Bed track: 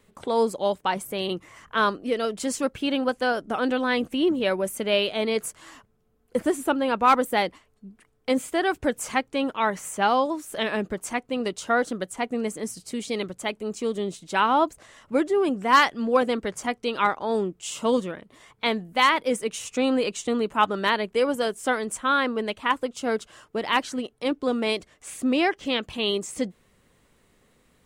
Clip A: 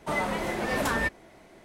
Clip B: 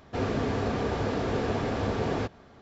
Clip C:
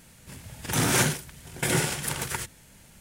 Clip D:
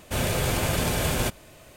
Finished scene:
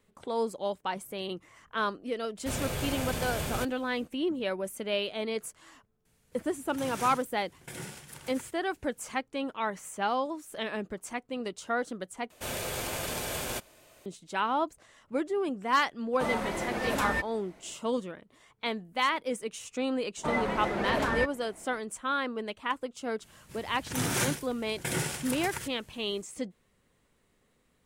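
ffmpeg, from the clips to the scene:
-filter_complex "[4:a]asplit=2[a][b];[3:a]asplit=2[c][d];[1:a]asplit=2[e][f];[0:a]volume=-8dB[g];[b]bass=f=250:g=-9,treble=f=4k:g=2[h];[f]lowpass=f=2.8k:p=1[i];[g]asplit=2[j][k];[j]atrim=end=12.304[l];[h]atrim=end=1.76,asetpts=PTS-STARTPTS,volume=-7.5dB[m];[k]atrim=start=14.056[n];[a]atrim=end=1.76,asetpts=PTS-STARTPTS,volume=-8.5dB,afade=t=in:d=0.1,afade=t=out:st=1.66:d=0.1,adelay=2350[o];[c]atrim=end=3,asetpts=PTS-STARTPTS,volume=-17dB,afade=t=in:d=0.004:c=hsin,afade=t=out:st=2.996:d=0.004:c=hsin,adelay=6050[p];[e]atrim=end=1.64,asetpts=PTS-STARTPTS,volume=-3dB,afade=t=in:d=0.004:c=hsin,afade=t=out:st=1.636:d=0.004:c=hsin,adelay=16130[q];[i]atrim=end=1.64,asetpts=PTS-STARTPTS,volume=-1dB,afade=t=in:d=0.004:c=hsin,afade=t=out:st=1.636:d=0.004:c=hsin,adelay=20170[r];[d]atrim=end=3,asetpts=PTS-STARTPTS,volume=-6.5dB,afade=t=in:d=0.004:c=hsin,afade=t=out:st=2.996:d=0.004:c=hsin,adelay=23220[s];[l][m]acrossfade=d=0.004:c1=hsin:c2=hsin[t];[t][n]acrossfade=d=0.004:c1=hsin:c2=hsin[u];[u][o][p][q][r][s]amix=inputs=6:normalize=0"

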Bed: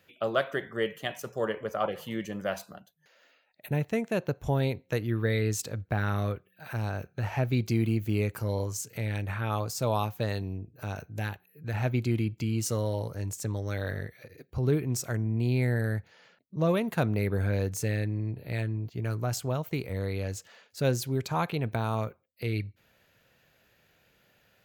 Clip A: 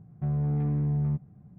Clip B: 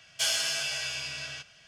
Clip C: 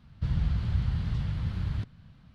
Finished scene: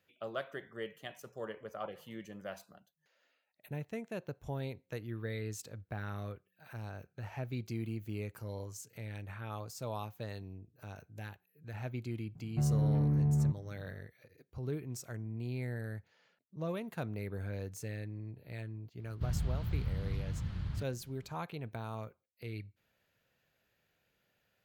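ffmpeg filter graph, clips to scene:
-filter_complex "[0:a]volume=-12dB[a];[1:a]atrim=end=1.58,asetpts=PTS-STARTPTS,volume=-2dB,afade=t=in:d=0.004:c=hsin,afade=t=out:st=1.576:d=0.004:c=hsin,adelay=12350[b];[3:a]atrim=end=2.34,asetpts=PTS-STARTPTS,volume=-7dB,afade=t=in:d=0.004:c=hsin,afade=t=out:st=2.336:d=0.004:c=hsin,adelay=18990[c];[a][b][c]amix=inputs=3:normalize=0"

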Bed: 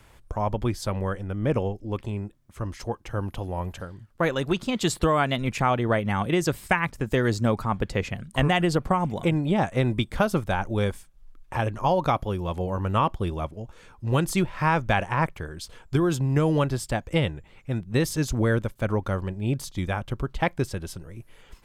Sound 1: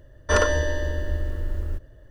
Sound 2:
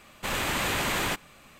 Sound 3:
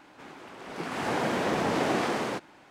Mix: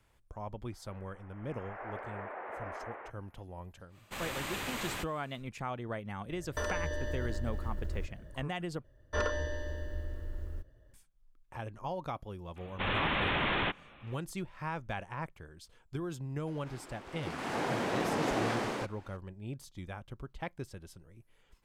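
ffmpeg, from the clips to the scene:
-filter_complex "[3:a]asplit=2[a][b];[2:a]asplit=2[c][d];[1:a]asplit=2[e][f];[0:a]volume=-15.5dB[g];[a]highpass=f=590:t=q:w=0.5412,highpass=f=590:t=q:w=1.307,lowpass=f=2.2k:t=q:w=0.5176,lowpass=f=2.2k:t=q:w=0.7071,lowpass=f=2.2k:t=q:w=1.932,afreqshift=-82[h];[e]acompressor=threshold=-30dB:ratio=6:attack=3.2:release=140:knee=1:detection=peak[i];[f]acrossover=split=5700[j][k];[k]acompressor=threshold=-52dB:ratio=4:attack=1:release=60[l];[j][l]amix=inputs=2:normalize=0[m];[d]aresample=8000,aresample=44100[n];[g]asplit=2[o][p];[o]atrim=end=8.844[q];[m]atrim=end=2.1,asetpts=PTS-STARTPTS,volume=-12dB[r];[p]atrim=start=10.936[s];[h]atrim=end=2.7,asetpts=PTS-STARTPTS,volume=-11.5dB,afade=t=in:d=0.004:c=hsin,afade=t=out:st=2.696:d=0.004:c=hsin,adelay=720[t];[c]atrim=end=1.59,asetpts=PTS-STARTPTS,volume=-10.5dB,afade=t=in:d=0.1,afade=t=out:st=1.49:d=0.1,adelay=3880[u];[i]atrim=end=2.1,asetpts=PTS-STARTPTS,volume=-1.5dB,afade=t=in:d=0.004:c=hsin,afade=t=out:st=2.096:d=0.004:c=hsin,adelay=6280[v];[n]atrim=end=1.59,asetpts=PTS-STARTPTS,volume=-2.5dB,afade=t=in:d=0.004:c=hsin,afade=t=out:st=1.586:d=0.004:c=hsin,adelay=12560[w];[b]atrim=end=2.7,asetpts=PTS-STARTPTS,volume=-5dB,afade=t=in:d=0.004:c=hsin,afade=t=out:st=2.696:d=0.004:c=hsin,adelay=16470[x];[q][r]acrossfade=d=0.004:c1=hsin:c2=hsin[y];[y][s]acrossfade=d=0.004:c1=hsin:c2=hsin[z];[z][t][u][v][w][x]amix=inputs=6:normalize=0"

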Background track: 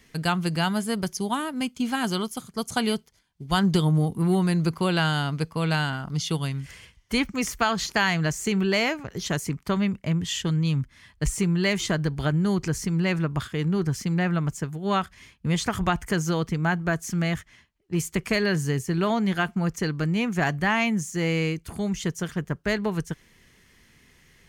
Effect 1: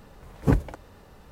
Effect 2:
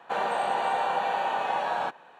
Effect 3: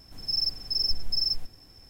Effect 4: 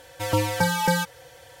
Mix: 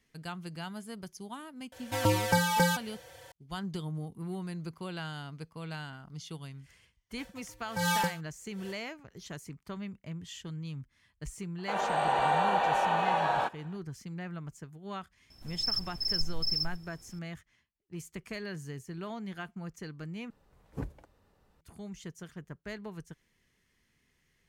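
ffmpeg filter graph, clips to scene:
-filter_complex "[4:a]asplit=2[a][b];[0:a]volume=-16dB[c];[b]aeval=exprs='val(0)*pow(10,-37*(0.5-0.5*cos(2*PI*1.3*n/s))/20)':c=same[d];[2:a]dynaudnorm=f=150:g=5:m=4.5dB[e];[c]asplit=2[f][g];[f]atrim=end=20.304[h];[1:a]atrim=end=1.31,asetpts=PTS-STARTPTS,volume=-17dB[i];[g]atrim=start=21.606[j];[a]atrim=end=1.6,asetpts=PTS-STARTPTS,volume=-3.5dB,afade=t=in:d=0.004:c=hsin,afade=t=out:st=1.596:d=0.004:c=hsin,adelay=1720[k];[d]atrim=end=1.6,asetpts=PTS-STARTPTS,volume=-1dB,afade=t=in:d=0.05,afade=t=out:st=1.55:d=0.05,adelay=7160[l];[e]atrim=end=2.19,asetpts=PTS-STARTPTS,volume=-4.5dB,afade=t=in:d=0.004:c=hsin,afade=t=out:st=2.186:d=0.004:c=hsin,adelay=11580[m];[3:a]atrim=end=1.89,asetpts=PTS-STARTPTS,volume=-4.5dB,afade=t=in:d=0.004:c=hsin,afade=t=out:st=1.886:d=0.004:c=hsin,adelay=15300[n];[h][i]acrossfade=d=0.004:c1=hsin:c2=hsin[o];[o][j]acrossfade=d=0.004:c1=hsin:c2=hsin[p];[p][k][l][m][n]amix=inputs=5:normalize=0"

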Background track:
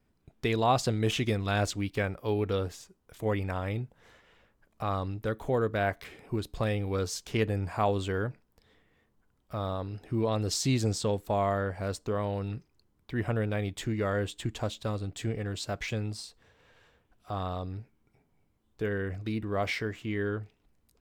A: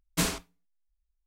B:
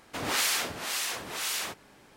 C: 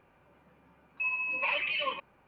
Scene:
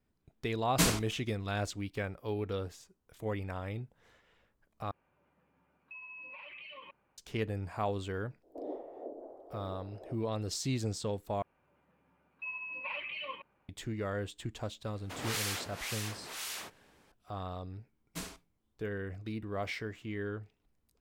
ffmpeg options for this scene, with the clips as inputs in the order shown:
-filter_complex "[1:a]asplit=2[a][b];[3:a]asplit=2[c][d];[2:a]asplit=2[e][f];[0:a]volume=-6.5dB[g];[c]acompressor=threshold=-35dB:ratio=6:attack=3.2:release=140:knee=1:detection=peak[h];[e]asuperpass=centerf=440:order=8:qfactor=1.1[i];[g]asplit=3[j][k][l];[j]atrim=end=4.914[m];[h]atrim=end=2.27,asetpts=PTS-STARTPTS,volume=-10.5dB[n];[k]atrim=start=7.176:end=11.424[o];[d]atrim=end=2.27,asetpts=PTS-STARTPTS,volume=-9dB[p];[l]atrim=start=13.686[q];[a]atrim=end=1.26,asetpts=PTS-STARTPTS,afade=t=in:d=0.004:c=hsin,afade=t=out:st=1.256:d=0.004:c=hsin,adelay=610[r];[i]atrim=end=2.16,asetpts=PTS-STARTPTS,volume=-1.5dB,afade=t=in:d=0.05,afade=t=out:st=2.11:d=0.05,adelay=8410[s];[f]atrim=end=2.16,asetpts=PTS-STARTPTS,volume=-8.5dB,afade=t=in:d=0.004:c=hsin,afade=t=out:st=2.156:d=0.004:c=hsin,adelay=14960[t];[b]atrim=end=1.26,asetpts=PTS-STARTPTS,volume=-14.5dB,afade=t=in:d=0.004:c=hsin,afade=t=out:st=1.256:d=0.004:c=hsin,adelay=17980[u];[m][n]acrossfade=d=0.004:c1=hsin:c2=hsin[v];[v][o]acrossfade=d=0.004:c1=hsin:c2=hsin[w];[w][p]acrossfade=d=0.004:c1=hsin:c2=hsin[x];[x][q]acrossfade=d=0.004:c1=hsin:c2=hsin[y];[y][r][s][t][u]amix=inputs=5:normalize=0"

